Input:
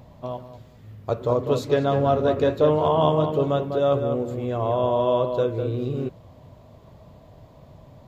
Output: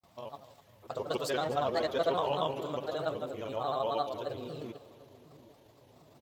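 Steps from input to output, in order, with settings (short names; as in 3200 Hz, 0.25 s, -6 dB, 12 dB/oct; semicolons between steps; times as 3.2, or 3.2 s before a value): grains, grains 20/s, pitch spread up and down by 3 st; tilt +3.5 dB/oct; tempo 1.3×; gate with hold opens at -47 dBFS; on a send: split-band echo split 400 Hz, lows 0.757 s, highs 0.25 s, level -15.5 dB; on the sum: gain -7 dB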